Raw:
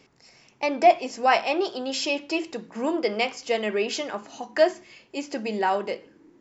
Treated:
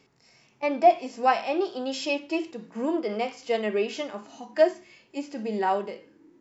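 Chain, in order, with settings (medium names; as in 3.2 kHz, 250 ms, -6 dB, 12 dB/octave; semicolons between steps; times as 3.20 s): harmonic-percussive split percussive -13 dB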